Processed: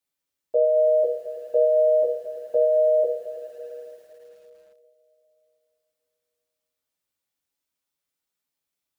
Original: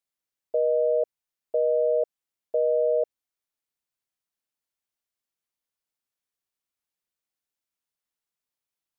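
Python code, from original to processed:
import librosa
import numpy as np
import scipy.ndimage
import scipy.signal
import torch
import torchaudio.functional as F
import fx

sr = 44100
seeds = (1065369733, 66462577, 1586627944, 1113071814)

y = fx.dynamic_eq(x, sr, hz=300.0, q=2.3, threshold_db=-45.0, ratio=4.0, max_db=-5, at=(2.02, 2.98))
y = fx.rev_double_slope(y, sr, seeds[0], early_s=0.23, late_s=3.4, knee_db=-18, drr_db=-1.5)
y = fx.echo_crushed(y, sr, ms=109, feedback_pct=80, bits=9, wet_db=-12.0)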